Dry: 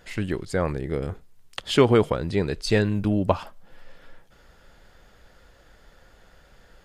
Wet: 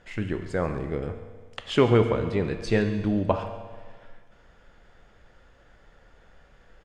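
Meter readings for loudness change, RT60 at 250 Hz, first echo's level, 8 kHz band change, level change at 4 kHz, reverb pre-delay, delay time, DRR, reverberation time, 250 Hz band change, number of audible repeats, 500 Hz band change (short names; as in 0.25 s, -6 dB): -2.0 dB, 1.6 s, -16.0 dB, n/a, -5.0 dB, 12 ms, 0.137 s, 6.5 dB, 1.6 s, -1.5 dB, 1, -1.5 dB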